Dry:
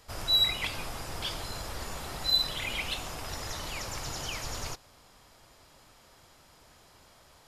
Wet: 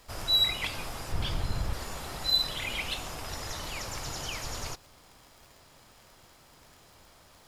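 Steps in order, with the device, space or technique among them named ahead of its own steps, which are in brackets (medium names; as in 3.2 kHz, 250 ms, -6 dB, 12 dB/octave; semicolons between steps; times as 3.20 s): 1.12–1.73 s: tone controls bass +11 dB, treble -5 dB; vinyl LP (crackle 60 per s -44 dBFS; pink noise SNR 30 dB)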